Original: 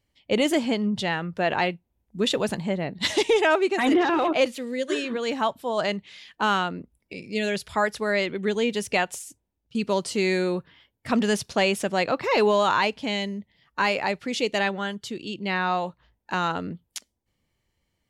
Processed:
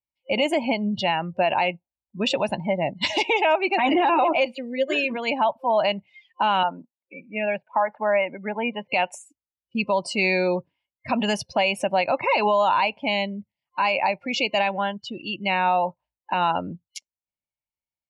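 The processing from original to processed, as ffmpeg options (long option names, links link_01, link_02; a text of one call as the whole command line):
ffmpeg -i in.wav -filter_complex "[0:a]asettb=1/sr,asplit=3[link_01][link_02][link_03];[link_01]atrim=end=6.634[link_04];[link_02]atrim=start=6.63:end=8.91,asetpts=PTS-STARTPTS,afade=type=in:duration=0.004:curve=qsin,afade=type=out:start_time=2.276:duration=0.004:curve=qsin,highpass=frequency=170:width=0.5412,highpass=frequency=170:width=1.3066,equalizer=frequency=190:width_type=q:width=4:gain=-5,equalizer=frequency=370:width_type=q:width=4:gain=-9,equalizer=frequency=900:width_type=q:width=4:gain=4,equalizer=frequency=2100:width_type=q:width=4:gain=-3,lowpass=frequency=2300:width=0.5412,lowpass=frequency=2300:width=1.3066[link_05];[link_03]atrim=start=8.906[link_06];[link_04][link_05]acrossfade=duration=0.004:curve1=hsin:curve2=qsin[link_07];[link_07][link_06]acrossfade=duration=0.004:curve1=qsin:curve2=hsin,afftdn=noise_reduction=29:noise_floor=-36,superequalizer=7b=0.631:8b=2.51:9b=3.16:12b=3.16:14b=1.58,alimiter=limit=-12dB:level=0:latency=1:release=114" out.wav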